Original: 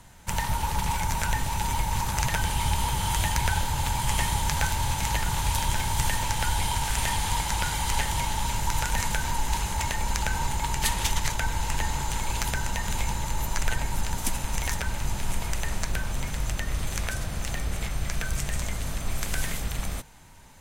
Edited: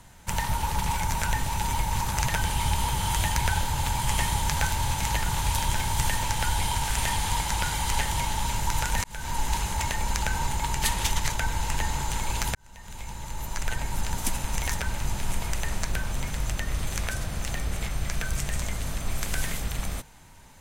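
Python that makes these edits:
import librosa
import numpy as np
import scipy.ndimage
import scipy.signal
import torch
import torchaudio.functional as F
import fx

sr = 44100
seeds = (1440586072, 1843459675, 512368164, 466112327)

y = fx.edit(x, sr, fx.fade_in_span(start_s=9.04, length_s=0.36),
    fx.fade_in_span(start_s=12.55, length_s=1.59), tone=tone)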